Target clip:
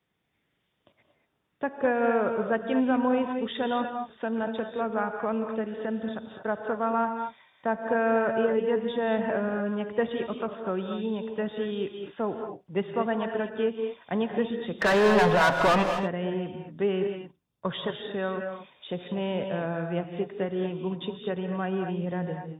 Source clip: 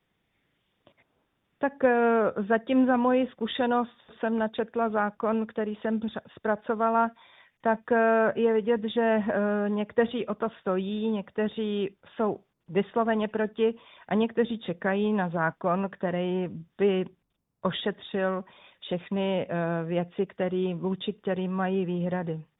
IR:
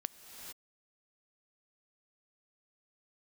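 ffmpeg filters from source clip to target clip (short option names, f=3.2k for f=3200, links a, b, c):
-filter_complex "[0:a]highpass=53,asplit=3[a][b][c];[a]afade=t=out:st=14.78:d=0.02[d];[b]asplit=2[e][f];[f]highpass=f=720:p=1,volume=33dB,asoftclip=type=tanh:threshold=-11.5dB[g];[e][g]amix=inputs=2:normalize=0,lowpass=f=2.8k:p=1,volume=-6dB,afade=t=in:st=14.78:d=0.02,afade=t=out:st=15.82:d=0.02[h];[c]afade=t=in:st=15.82:d=0.02[i];[d][h][i]amix=inputs=3:normalize=0[j];[1:a]atrim=start_sample=2205,asetrate=83790,aresample=44100[k];[j][k]afir=irnorm=-1:irlink=0,volume=5dB"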